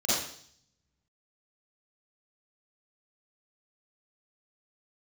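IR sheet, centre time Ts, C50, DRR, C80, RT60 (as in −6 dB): 77 ms, −4.0 dB, −12.5 dB, 2.5 dB, 0.60 s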